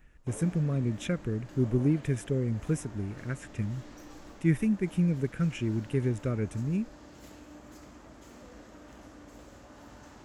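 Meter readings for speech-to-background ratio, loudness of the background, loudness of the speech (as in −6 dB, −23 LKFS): 19.0 dB, −49.5 LKFS, −30.5 LKFS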